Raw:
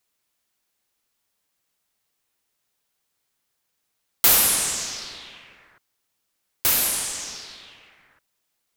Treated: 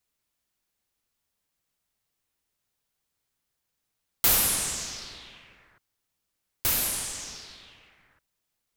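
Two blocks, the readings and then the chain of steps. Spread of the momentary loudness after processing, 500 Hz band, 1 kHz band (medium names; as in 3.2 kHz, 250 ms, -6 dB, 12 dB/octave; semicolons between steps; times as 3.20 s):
19 LU, -4.5 dB, -5.0 dB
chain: bass shelf 160 Hz +10 dB; trim -5.5 dB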